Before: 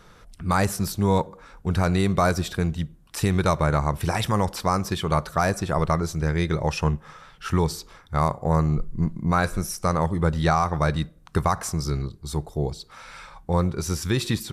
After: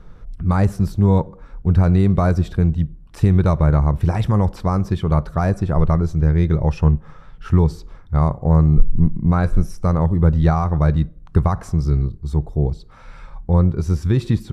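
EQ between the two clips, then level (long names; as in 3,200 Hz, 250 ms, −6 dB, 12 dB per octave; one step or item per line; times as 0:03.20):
spectral tilt −3.5 dB per octave
−2.0 dB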